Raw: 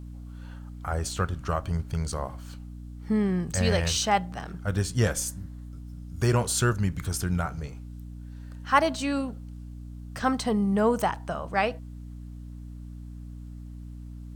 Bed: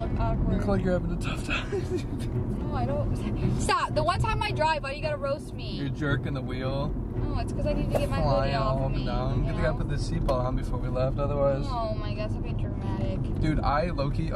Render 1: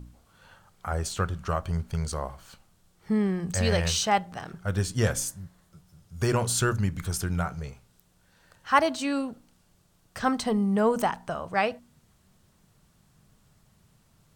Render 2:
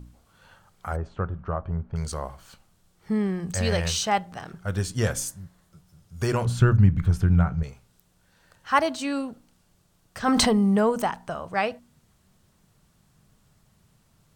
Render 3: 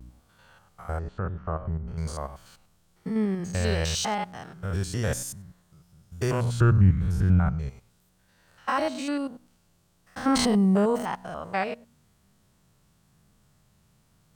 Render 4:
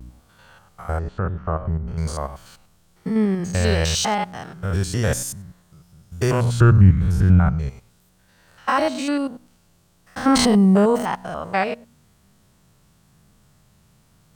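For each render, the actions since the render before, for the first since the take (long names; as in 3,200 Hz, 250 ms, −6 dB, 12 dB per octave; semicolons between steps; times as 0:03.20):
hum removal 60 Hz, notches 5
0:00.96–0:01.96: low-pass filter 1,200 Hz; 0:06.45–0:07.63: bass and treble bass +11 dB, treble −15 dB; 0:10.28–0:10.90: envelope flattener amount 100%
spectrum averaged block by block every 100 ms; pitch vibrato 1 Hz 58 cents
level +6.5 dB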